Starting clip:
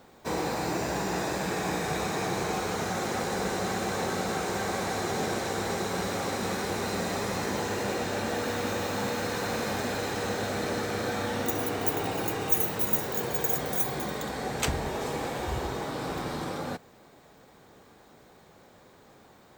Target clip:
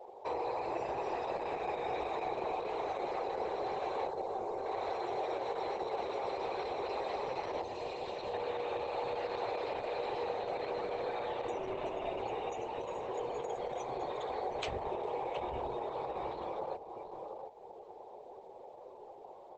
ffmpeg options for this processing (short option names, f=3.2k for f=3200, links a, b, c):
-filter_complex "[0:a]asettb=1/sr,asplit=3[a][b][c];[a]atrim=end=7.634[d];[b]atrim=start=7.63:end=8.34,asetpts=PTS-STARTPTS,afade=t=in:d=0.004:c=qsin,afade=t=out:st=0.706:d=0.004:c=qsin,acrossover=split=140|3000[e][f][g];[f]acompressor=threshold=-42dB:ratio=2[h];[e][h][g]amix=inputs=3:normalize=0[i];[c]atrim=start=8.336[j];[d][i]acrossfade=d=0.004:c1=hsin:c2=qsin[k];[k][j]acrossfade=d=0.004:c1=qsin:c2=hsin,asettb=1/sr,asplit=3[l][m][n];[l]atrim=end=11.584[o];[m]atrim=start=11.58:end=12.22,asetpts=PTS-STARTPTS,afade=t=in:d=0.004:c=qsin,afade=t=out:st=0.636:d=0.004:c=qsin,afreqshift=-100[p];[n]atrim=start=12.216[q];[o][p]acrossfade=d=0.004:c1=hsin:c2=qsin[r];[r][q]acrossfade=d=0.004:c1=qsin:c2=hsin,firequalizer=gain_entry='entry(120,0);entry(230,-25);entry(360,9);entry(900,11);entry(1400,-2);entry(2500,8);entry(6400,-1);entry(9300,0)':delay=0.05:min_phase=1,aecho=1:1:716:0.251,acompressor=threshold=-44dB:ratio=2,asettb=1/sr,asplit=3[s][t][u];[s]atrim=end=4.094[v];[t]atrim=start=4.09:end=4.66,asetpts=PTS-STARTPTS,afade=t=in:d=0.004:c=qsin,afade=t=out:st=0.566:d=0.004:c=qsin,equalizer=f=2.3k:w=0.65:g=-5.5[w];[u]atrim=start=4.656[x];[v][w]acrossfade=d=0.004:c1=hsin:c2=qsin[y];[y][x]acrossfade=d=0.004:c1=qsin:c2=hsin,bandreject=f=50:t=h:w=6,bandreject=f=100:t=h:w=6,bandreject=f=150:t=h:w=6,bandreject=f=200:t=h:w=6,bandreject=f=250:t=h:w=6,bandreject=f=300:t=h:w=6,bandreject=f=350:t=h:w=6,bandreject=f=400:t=h:w=6,bandreject=f=450:t=h:w=6,afftdn=nr=18:nf=-46" -ar 48000 -c:a libopus -b:a 10k